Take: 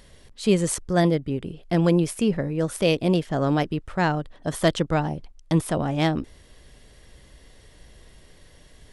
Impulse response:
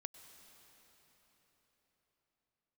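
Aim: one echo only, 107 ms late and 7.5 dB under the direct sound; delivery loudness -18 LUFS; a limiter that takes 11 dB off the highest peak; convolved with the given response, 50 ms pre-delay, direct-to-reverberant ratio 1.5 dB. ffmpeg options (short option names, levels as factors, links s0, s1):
-filter_complex "[0:a]alimiter=limit=0.133:level=0:latency=1,aecho=1:1:107:0.422,asplit=2[s0][s1];[1:a]atrim=start_sample=2205,adelay=50[s2];[s1][s2]afir=irnorm=-1:irlink=0,volume=1.41[s3];[s0][s3]amix=inputs=2:normalize=0,volume=2.37"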